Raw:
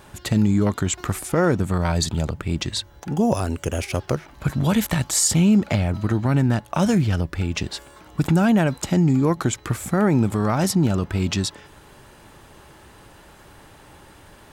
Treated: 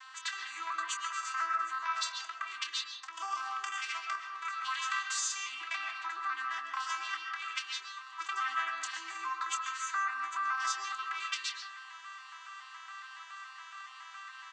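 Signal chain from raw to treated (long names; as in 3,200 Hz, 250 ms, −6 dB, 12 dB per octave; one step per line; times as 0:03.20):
vocoder with an arpeggio as carrier major triad, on C4, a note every 140 ms
elliptic high-pass filter 1,100 Hz, stop band 50 dB
downward compressor 2 to 1, threshold −48 dBFS, peak gain reduction 12 dB
ambience of single reflections 16 ms −11 dB, 27 ms −10 dB
convolution reverb RT60 1.1 s, pre-delay 90 ms, DRR 2 dB
level +8 dB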